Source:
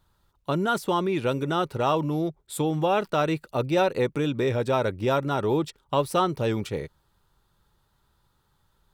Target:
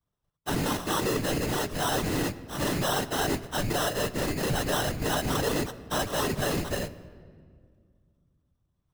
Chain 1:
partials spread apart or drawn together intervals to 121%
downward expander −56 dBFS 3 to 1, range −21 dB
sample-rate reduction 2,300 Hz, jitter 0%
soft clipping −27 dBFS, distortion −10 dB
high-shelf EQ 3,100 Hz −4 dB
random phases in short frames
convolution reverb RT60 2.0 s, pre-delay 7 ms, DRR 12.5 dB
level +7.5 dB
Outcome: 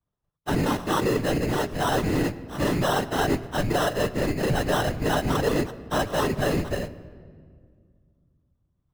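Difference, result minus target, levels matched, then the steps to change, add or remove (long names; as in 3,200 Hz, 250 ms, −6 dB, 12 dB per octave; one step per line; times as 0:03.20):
8,000 Hz band −7.0 dB; soft clipping: distortion −4 dB
change: soft clipping −34 dBFS, distortion −6 dB
change: high-shelf EQ 3,100 Hz +5.5 dB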